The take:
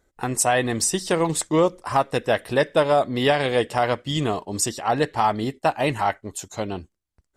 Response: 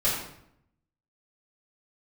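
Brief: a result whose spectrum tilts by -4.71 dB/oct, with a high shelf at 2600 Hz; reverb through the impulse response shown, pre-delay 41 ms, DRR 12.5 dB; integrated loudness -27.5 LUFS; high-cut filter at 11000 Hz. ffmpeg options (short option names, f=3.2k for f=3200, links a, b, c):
-filter_complex "[0:a]lowpass=11k,highshelf=f=2.6k:g=-4.5,asplit=2[a][b];[1:a]atrim=start_sample=2205,adelay=41[c];[b][c]afir=irnorm=-1:irlink=0,volume=-24dB[d];[a][d]amix=inputs=2:normalize=0,volume=-4.5dB"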